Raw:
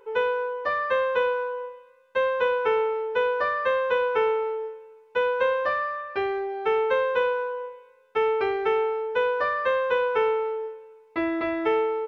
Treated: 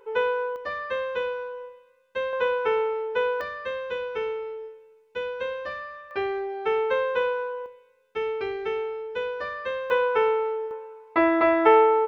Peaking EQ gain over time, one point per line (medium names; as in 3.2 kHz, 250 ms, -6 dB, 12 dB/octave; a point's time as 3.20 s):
peaking EQ 940 Hz 2.2 oct
0 dB
from 0.56 s -7.5 dB
from 2.33 s -1.5 dB
from 3.41 s -11.5 dB
from 6.11 s -2 dB
from 7.66 s -9.5 dB
from 9.90 s +1.5 dB
from 10.71 s +11 dB